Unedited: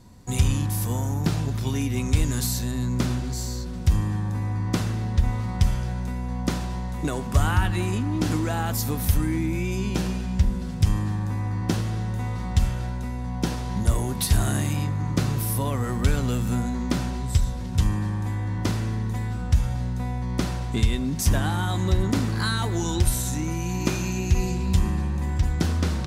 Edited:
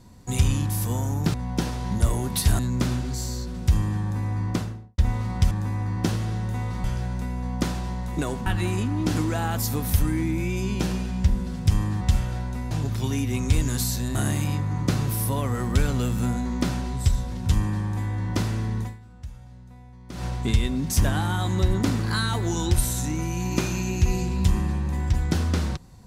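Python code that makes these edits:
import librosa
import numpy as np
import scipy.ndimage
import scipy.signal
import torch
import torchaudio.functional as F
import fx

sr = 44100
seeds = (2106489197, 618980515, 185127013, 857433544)

y = fx.studio_fade_out(x, sr, start_s=4.6, length_s=0.57)
y = fx.edit(y, sr, fx.swap(start_s=1.34, length_s=1.44, other_s=13.19, other_length_s=1.25),
    fx.cut(start_s=7.32, length_s=0.29),
    fx.move(start_s=11.16, length_s=1.33, to_s=5.7),
    fx.fade_down_up(start_s=19.11, length_s=1.43, db=-18.0, fade_s=0.19, curve='qua'), tone=tone)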